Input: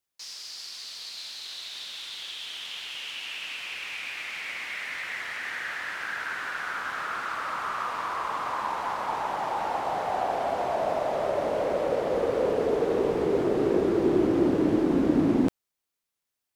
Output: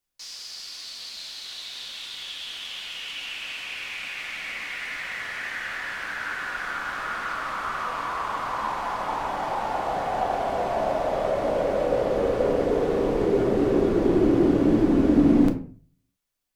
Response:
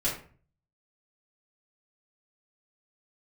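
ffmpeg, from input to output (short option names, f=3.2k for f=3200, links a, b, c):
-filter_complex "[0:a]asplit=2[a][b];[1:a]atrim=start_sample=2205,lowshelf=f=130:g=11[c];[b][c]afir=irnorm=-1:irlink=0,volume=-9dB[d];[a][d]amix=inputs=2:normalize=0,volume=-2dB"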